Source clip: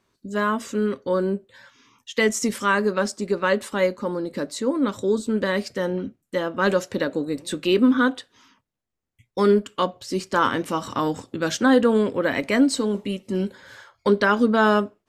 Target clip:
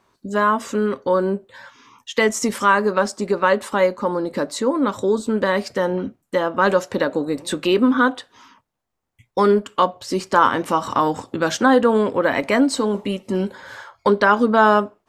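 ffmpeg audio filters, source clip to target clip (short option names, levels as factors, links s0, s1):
-filter_complex "[0:a]equalizer=f=900:t=o:w=1.4:g=8.5,asplit=2[s0][s1];[s1]acompressor=threshold=0.0631:ratio=6,volume=1.06[s2];[s0][s2]amix=inputs=2:normalize=0,volume=0.75"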